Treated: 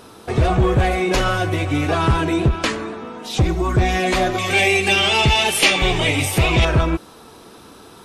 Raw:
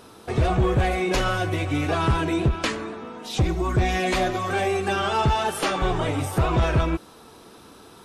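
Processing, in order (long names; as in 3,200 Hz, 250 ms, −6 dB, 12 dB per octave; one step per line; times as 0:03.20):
0:04.38–0:06.65: high shelf with overshoot 1,800 Hz +7.5 dB, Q 3
level +4.5 dB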